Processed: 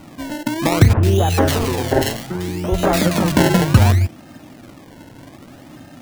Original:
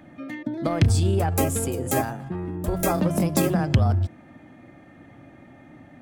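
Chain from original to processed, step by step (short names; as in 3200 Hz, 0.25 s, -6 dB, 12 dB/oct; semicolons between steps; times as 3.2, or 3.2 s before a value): decimation with a swept rate 25×, swing 100% 0.64 Hz; 0.93–3.32 three bands offset in time mids, lows, highs 40/100 ms, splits 160/1800 Hz; gain +7.5 dB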